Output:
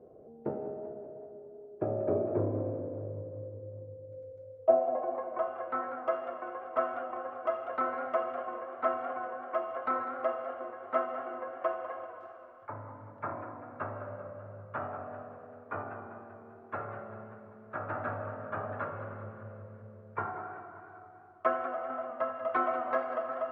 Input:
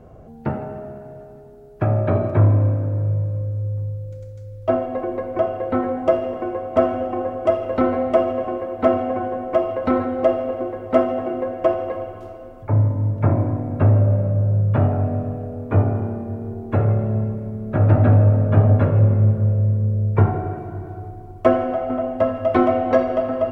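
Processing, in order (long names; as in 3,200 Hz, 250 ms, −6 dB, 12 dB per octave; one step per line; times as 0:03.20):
band-pass filter sweep 430 Hz → 1,300 Hz, 0:04.14–0:05.58
feedback echo with a swinging delay time 195 ms, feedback 55%, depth 148 cents, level −12 dB
level −3 dB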